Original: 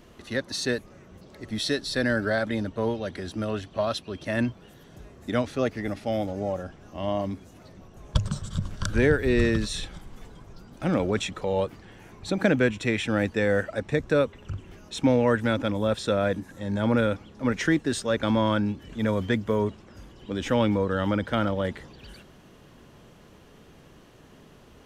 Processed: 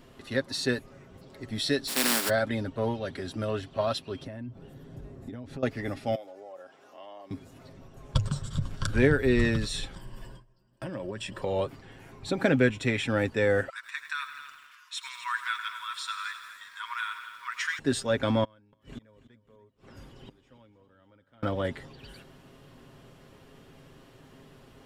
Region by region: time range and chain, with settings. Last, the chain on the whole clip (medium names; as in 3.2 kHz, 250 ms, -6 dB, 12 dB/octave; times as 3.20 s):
1.87–2.28 s: spectral contrast reduction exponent 0.16 + resonant low shelf 150 Hz -14 dB, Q 3
4.24–5.63 s: tilt shelf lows +6.5 dB, about 720 Hz + compression 20:1, threshold -34 dBFS
6.15–7.31 s: Chebyshev high-pass 530 Hz + compression 2:1, threshold -49 dBFS
9.95–11.42 s: gate with hold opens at -34 dBFS, closes at -41 dBFS + rippled EQ curve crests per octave 1.3, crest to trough 11 dB + compression, threshold -31 dBFS
13.69–17.79 s: brick-wall FIR high-pass 940 Hz + multi-head delay 84 ms, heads all three, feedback 44%, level -15 dB + bit-crushed delay 101 ms, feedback 55%, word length 8-bit, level -13 dB
18.44–21.43 s: inverted gate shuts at -29 dBFS, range -33 dB + feedback delay 288 ms, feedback 34%, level -16 dB
whole clip: band-stop 6.2 kHz, Q 10; comb 7.5 ms, depth 46%; trim -2 dB